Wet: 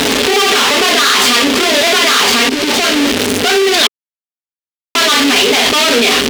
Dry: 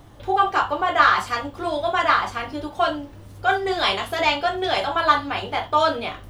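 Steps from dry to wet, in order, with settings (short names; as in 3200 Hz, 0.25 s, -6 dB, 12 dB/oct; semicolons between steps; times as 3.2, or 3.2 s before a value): infinite clipping; weighting filter D; 2.49–2.96 expander -11 dBFS; bell 110 Hz -9.5 dB 1.1 oct; 3.87–4.95 mute; small resonant body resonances 250/410 Hz, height 17 dB, ringing for 75 ms; crossover distortion -36 dBFS; maximiser +15 dB; gain -1 dB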